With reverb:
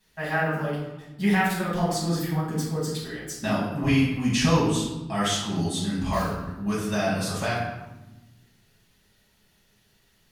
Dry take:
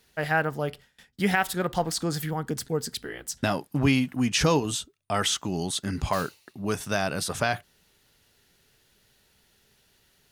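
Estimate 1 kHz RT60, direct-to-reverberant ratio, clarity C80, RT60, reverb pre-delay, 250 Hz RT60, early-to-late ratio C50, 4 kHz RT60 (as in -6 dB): 1.0 s, -8.5 dB, 5.0 dB, 1.1 s, 5 ms, 1.9 s, 1.5 dB, 0.65 s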